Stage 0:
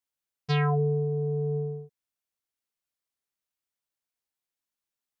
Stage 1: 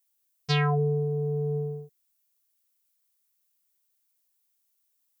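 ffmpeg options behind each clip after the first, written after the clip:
-af "aemphasis=mode=production:type=75kf"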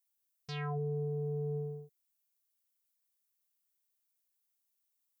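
-af "alimiter=limit=-22.5dB:level=0:latency=1,volume=-7.5dB"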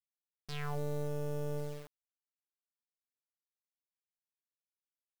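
-af "acrusher=bits=6:dc=4:mix=0:aa=0.000001,volume=3dB"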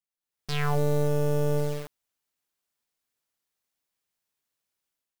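-af "dynaudnorm=f=100:g=7:m=12dB"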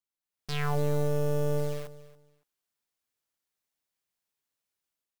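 -af "aecho=1:1:281|562:0.133|0.0293,volume=-3dB"

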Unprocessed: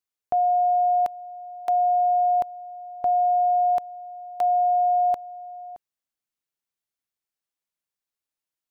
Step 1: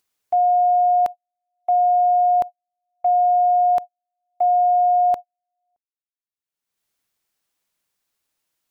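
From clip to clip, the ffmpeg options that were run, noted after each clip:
-af "agate=range=-50dB:threshold=-27dB:ratio=16:detection=peak,acompressor=mode=upward:threshold=-38dB:ratio=2.5,volume=4dB"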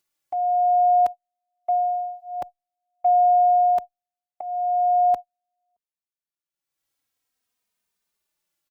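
-filter_complex "[0:a]asplit=2[a][b];[b]adelay=3,afreqshift=-0.47[c];[a][c]amix=inputs=2:normalize=1"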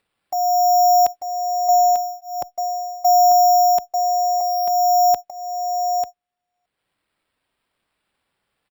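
-filter_complex "[0:a]acrusher=samples=7:mix=1:aa=0.000001,asplit=2[a][b];[b]aecho=0:1:893:0.501[c];[a][c]amix=inputs=2:normalize=0,volume=3.5dB"

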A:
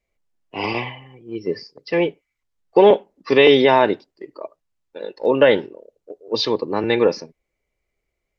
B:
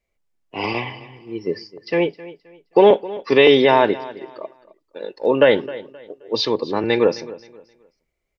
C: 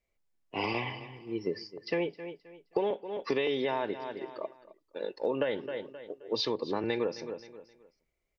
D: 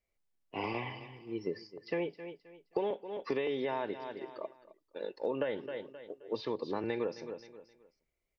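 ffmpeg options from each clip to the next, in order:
-af "aecho=1:1:263|526|789:0.126|0.0365|0.0106"
-af "acompressor=threshold=-22dB:ratio=8,volume=-5dB"
-filter_complex "[0:a]acrossover=split=2500[a][b];[b]acompressor=threshold=-47dB:ratio=4:attack=1:release=60[c];[a][c]amix=inputs=2:normalize=0,volume=-3.5dB"

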